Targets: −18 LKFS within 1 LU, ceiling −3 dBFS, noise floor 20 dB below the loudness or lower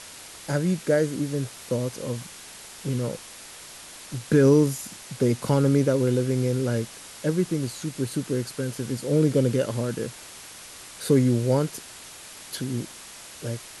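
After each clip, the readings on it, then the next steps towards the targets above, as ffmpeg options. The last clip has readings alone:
background noise floor −44 dBFS; target noise floor −45 dBFS; integrated loudness −25.0 LKFS; sample peak −7.5 dBFS; target loudness −18.0 LKFS
→ -af "afftdn=noise_reduction=6:noise_floor=-44"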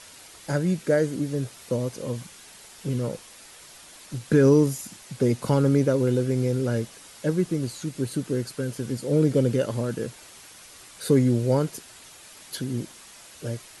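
background noise floor −48 dBFS; integrated loudness −25.0 LKFS; sample peak −8.0 dBFS; target loudness −18.0 LKFS
→ -af "volume=7dB,alimiter=limit=-3dB:level=0:latency=1"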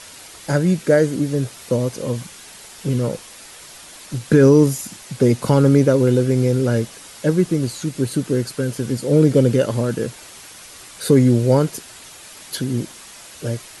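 integrated loudness −18.5 LKFS; sample peak −3.0 dBFS; background noise floor −41 dBFS

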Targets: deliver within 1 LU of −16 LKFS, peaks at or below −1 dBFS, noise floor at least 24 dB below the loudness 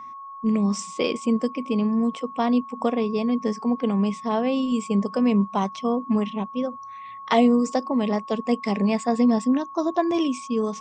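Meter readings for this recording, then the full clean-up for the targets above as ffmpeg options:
interfering tone 1,100 Hz; level of the tone −36 dBFS; integrated loudness −23.5 LKFS; sample peak −6.0 dBFS; target loudness −16.0 LKFS
→ -af "bandreject=frequency=1100:width=30"
-af "volume=7.5dB,alimiter=limit=-1dB:level=0:latency=1"

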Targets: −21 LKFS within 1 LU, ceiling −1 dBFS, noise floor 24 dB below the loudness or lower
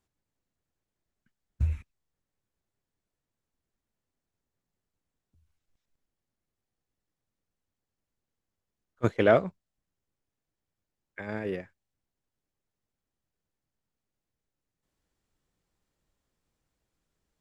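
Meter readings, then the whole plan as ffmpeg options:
integrated loudness −28.5 LKFS; sample peak −7.0 dBFS; target loudness −21.0 LKFS
→ -af "volume=7.5dB,alimiter=limit=-1dB:level=0:latency=1"

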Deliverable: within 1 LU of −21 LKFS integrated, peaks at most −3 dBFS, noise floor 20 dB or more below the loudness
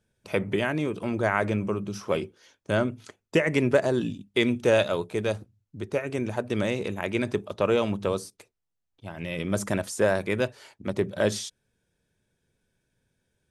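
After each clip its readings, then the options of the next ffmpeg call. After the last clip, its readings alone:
integrated loudness −27.0 LKFS; sample peak −7.5 dBFS; target loudness −21.0 LKFS
→ -af "volume=6dB,alimiter=limit=-3dB:level=0:latency=1"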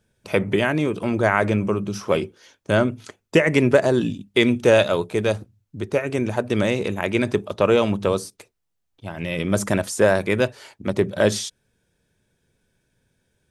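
integrated loudness −21.5 LKFS; sample peak −3.0 dBFS; background noise floor −74 dBFS

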